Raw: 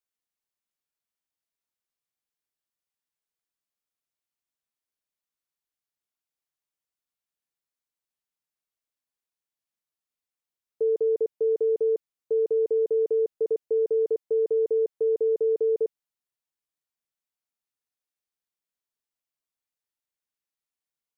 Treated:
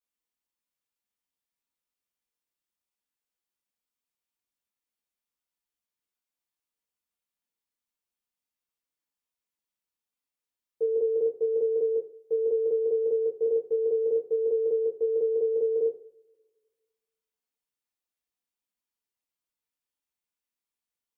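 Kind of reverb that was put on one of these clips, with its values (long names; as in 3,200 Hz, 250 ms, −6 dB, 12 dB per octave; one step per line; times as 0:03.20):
coupled-rooms reverb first 0.4 s, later 1.6 s, from −25 dB, DRR −5.5 dB
level −7 dB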